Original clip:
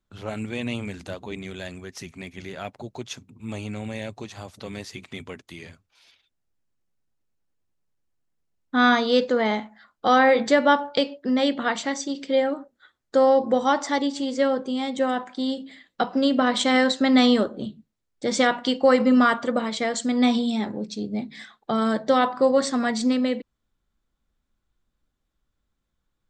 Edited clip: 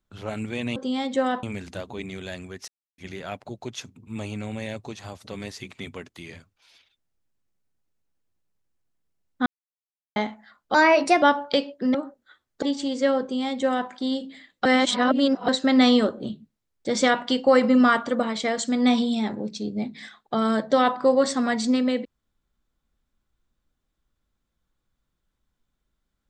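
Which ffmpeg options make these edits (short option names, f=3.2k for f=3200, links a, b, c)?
-filter_complex "[0:a]asplit=13[a][b][c][d][e][f][g][h][i][j][k][l][m];[a]atrim=end=0.762[n];[b]atrim=start=14.588:end=15.262[o];[c]atrim=start=0.758:end=2.01,asetpts=PTS-STARTPTS,afade=t=out:st=1.248:d=0.004:c=hsin[p];[d]atrim=start=2.01:end=2.31,asetpts=PTS-STARTPTS,volume=0[q];[e]atrim=start=2.31:end=8.79,asetpts=PTS-STARTPTS,afade=t=in:d=0.004:c=hsin,afade=t=out:st=6.476:d=0.004:c=hsin[r];[f]atrim=start=8.79:end=9.49,asetpts=PTS-STARTPTS,volume=0[s];[g]atrim=start=9.49:end=10.074,asetpts=PTS-STARTPTS,afade=t=in:d=0.004:c=hsin[t];[h]atrim=start=10.07:end=10.66,asetpts=PTS-STARTPTS,asetrate=53802,aresample=44100,atrim=end_sample=21327,asetpts=PTS-STARTPTS[u];[i]atrim=start=10.656:end=11.382[v];[j]atrim=start=12.478:end=13.162[w];[k]atrim=start=13.988:end=16.022[x];[l]atrim=start=16.018:end=16.852,asetpts=PTS-STARTPTS,areverse[y];[m]atrim=start=16.848[z];[n][o]acrossfade=d=0.004:c1=hsin:c2=hsin[aa];[p][q][r][s][t]concat=n=5:v=0:a=1[ab];[aa][ab]acrossfade=d=0.004:c1=hsin:c2=hsin[ac];[ac][u]acrossfade=d=0.004:c1=hsin:c2=hsin[ad];[ad][v]acrossfade=d=0.004:c1=hsin:c2=hsin[ae];[ae][w]acrossfade=d=0.004:c1=hsin:c2=hsin[af];[af][x]acrossfade=d=0.004:c1=hsin:c2=hsin[ag];[ag][y]acrossfade=d=0.004:c1=hsin:c2=hsin[ah];[ah][z]acrossfade=d=0.004:c1=hsin:c2=hsin"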